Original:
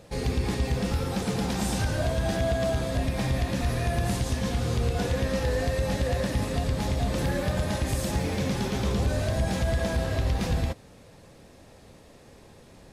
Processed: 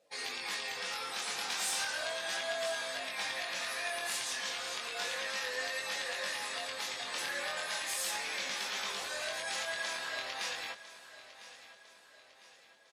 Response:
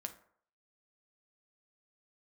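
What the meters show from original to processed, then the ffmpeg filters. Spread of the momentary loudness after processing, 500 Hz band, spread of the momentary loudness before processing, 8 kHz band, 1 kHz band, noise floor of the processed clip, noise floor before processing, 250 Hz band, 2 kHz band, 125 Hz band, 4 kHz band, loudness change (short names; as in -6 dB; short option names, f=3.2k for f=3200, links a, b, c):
6 LU, -12.5 dB, 2 LU, +0.5 dB, -6.5 dB, -60 dBFS, -52 dBFS, -27.5 dB, +1.0 dB, under -35 dB, +1.5 dB, -7.5 dB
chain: -filter_complex "[0:a]afftdn=nr=20:nf=-48,highpass=1.4k,flanger=delay=19.5:depth=4:speed=0.35,asoftclip=type=tanh:threshold=-30.5dB,asplit=2[a][b];[b]aecho=0:1:1003|2006|3009|4012:0.168|0.0789|0.0371|0.0174[c];[a][c]amix=inputs=2:normalize=0,volume=6dB"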